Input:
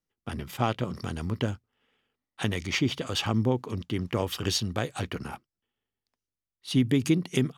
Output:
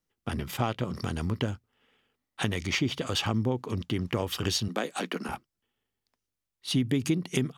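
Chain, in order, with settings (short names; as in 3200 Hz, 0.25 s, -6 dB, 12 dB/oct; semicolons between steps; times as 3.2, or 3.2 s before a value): 4.68–5.29 steep high-pass 180 Hz 48 dB/oct; compressor 2:1, threshold -32 dBFS, peak gain reduction 8 dB; gain +4 dB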